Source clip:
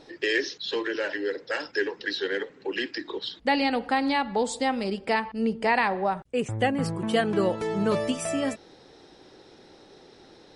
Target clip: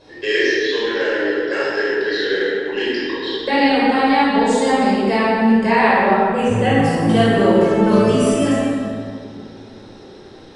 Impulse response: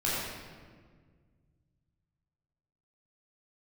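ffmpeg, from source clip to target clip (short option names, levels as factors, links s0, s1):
-filter_complex "[0:a]asettb=1/sr,asplit=3[s0][s1][s2];[s0]atrim=end=1.784[s3];[s1]atrim=start=1.78:end=2.69,asetpts=PTS-STARTPTS,afade=t=in:d=0.004:c=qsin,afade=t=out:st=0.906:d=0.004:c=qsin,equalizer=f=1000:w=3.9:g=-9[s4];[s2]atrim=start=2.686[s5];[s3][s4]acrossfade=d=0.004:c1=hsin:c2=qsin[s6];[s6][s5]acrossfade=d=0.004:c1=qsin:c2=hsin[s7];[1:a]atrim=start_sample=2205,asetrate=30429,aresample=44100[s8];[s7][s8]afir=irnorm=-1:irlink=0,volume=0.75"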